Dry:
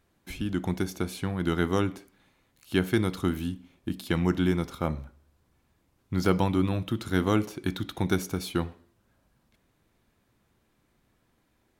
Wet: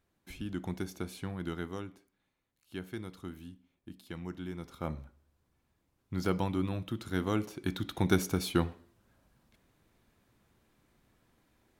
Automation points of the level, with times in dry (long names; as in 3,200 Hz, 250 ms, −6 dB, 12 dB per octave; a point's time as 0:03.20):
0:01.34 −8 dB
0:01.86 −16 dB
0:04.49 −16 dB
0:04.89 −7 dB
0:07.32 −7 dB
0:08.20 0 dB